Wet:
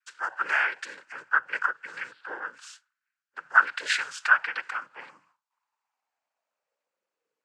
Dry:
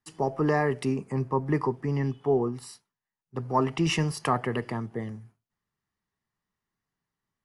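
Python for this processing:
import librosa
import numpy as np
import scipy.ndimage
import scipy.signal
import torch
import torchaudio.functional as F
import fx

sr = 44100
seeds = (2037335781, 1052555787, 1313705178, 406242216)

y = fx.noise_vocoder(x, sr, seeds[0], bands=8)
y = fx.filter_sweep_highpass(y, sr, from_hz=1500.0, to_hz=470.0, start_s=4.54, end_s=7.17, q=4.7)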